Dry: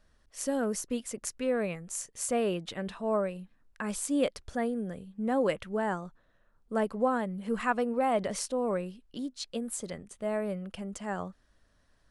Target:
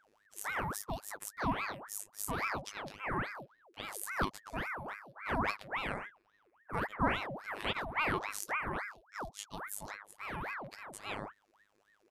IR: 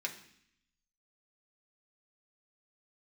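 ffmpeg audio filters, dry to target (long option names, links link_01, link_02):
-af "afftfilt=real='hypot(re,im)*cos(PI*b)':imag='0':win_size=2048:overlap=0.75,asetrate=52444,aresample=44100,atempo=0.840896,aeval=exprs='val(0)*sin(2*PI*1100*n/s+1100*0.7/3.6*sin(2*PI*3.6*n/s))':channel_layout=same"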